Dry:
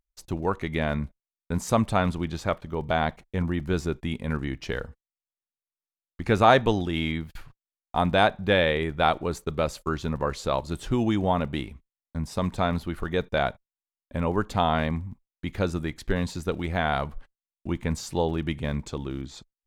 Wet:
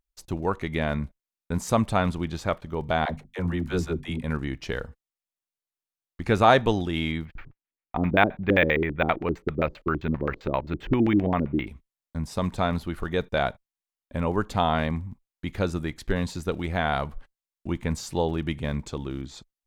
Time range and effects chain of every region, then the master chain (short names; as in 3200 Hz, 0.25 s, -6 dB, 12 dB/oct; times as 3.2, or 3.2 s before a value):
3.05–4.23 notches 50/100/150/200/250 Hz + dispersion lows, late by 53 ms, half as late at 470 Hz
7.25–11.67 high shelf 7400 Hz +7 dB + LFO low-pass square 7.6 Hz 330–2200 Hz + decimation joined by straight lines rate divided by 2×
whole clip: dry